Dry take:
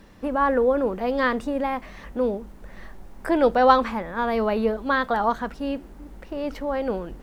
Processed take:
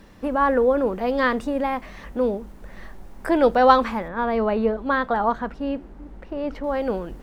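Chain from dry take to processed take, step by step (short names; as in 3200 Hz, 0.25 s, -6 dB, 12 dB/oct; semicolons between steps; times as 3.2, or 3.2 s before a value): 4.08–6.64 LPF 2100 Hz 6 dB/oct; gain +1.5 dB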